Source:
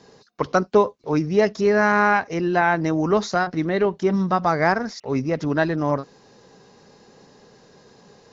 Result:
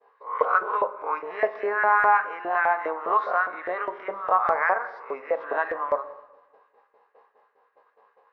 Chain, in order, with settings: reverse spectral sustain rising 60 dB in 0.43 s; cabinet simulation 160–2500 Hz, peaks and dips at 170 Hz -3 dB, 470 Hz +8 dB, 1.1 kHz +8 dB; LFO high-pass saw up 4.9 Hz 550–1800 Hz; expander -41 dBFS; reverberation RT60 1.1 s, pre-delay 8 ms, DRR 10.5 dB; trim -8.5 dB

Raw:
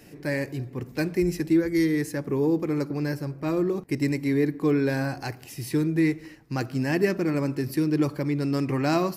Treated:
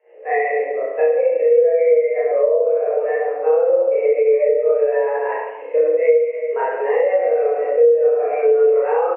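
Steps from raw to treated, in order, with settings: doubling 22 ms -13 dB; spring tank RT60 1.3 s, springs 32/58 ms, chirp 60 ms, DRR -9.5 dB; mistuned SSB +160 Hz 270–2500 Hz; compression 12:1, threshold -20 dBFS, peak gain reduction 13 dB; spectral contrast expander 1.5:1; trim +8 dB

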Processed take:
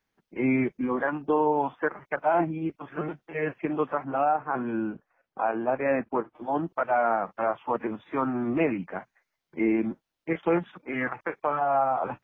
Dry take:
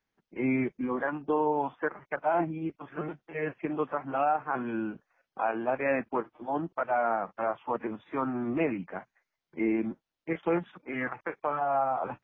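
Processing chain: 4.04–6.35 s: treble shelf 2.7 kHz -12 dB; trim +3.5 dB

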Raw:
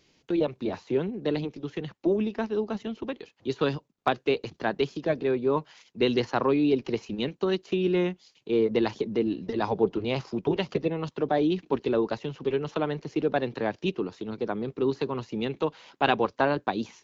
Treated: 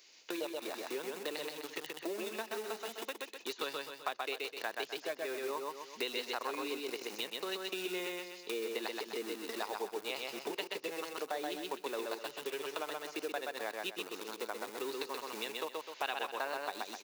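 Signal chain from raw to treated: in parallel at -5 dB: small samples zeroed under -29 dBFS; on the sum: high-pass 410 Hz 12 dB/octave; tilt EQ +3 dB/octave; band-stop 3.2 kHz, Q 15; on a send: feedback delay 127 ms, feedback 29%, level -3.5 dB; on the sum: compression 3:1, threshold -40 dBFS, peak gain reduction 19 dB

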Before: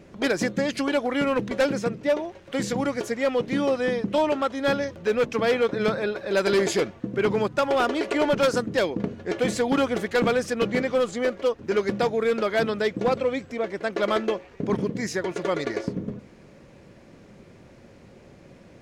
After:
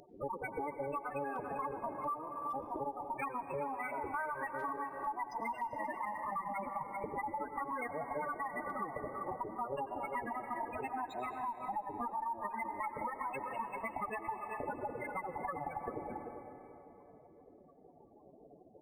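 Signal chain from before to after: octave divider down 1 oct, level -5 dB; comb 6.8 ms, depth 49%; full-wave rectifier; spectral gate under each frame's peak -20 dB strong; high-pass 680 Hz 6 dB/octave; treble shelf 4.2 kHz +10 dB; speakerphone echo 390 ms, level -10 dB; reverberation RT60 3.1 s, pre-delay 85 ms, DRR 10 dB; compression, threshold -39 dBFS, peak gain reduction 13.5 dB; decimation joined by straight lines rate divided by 4×; trim +3 dB

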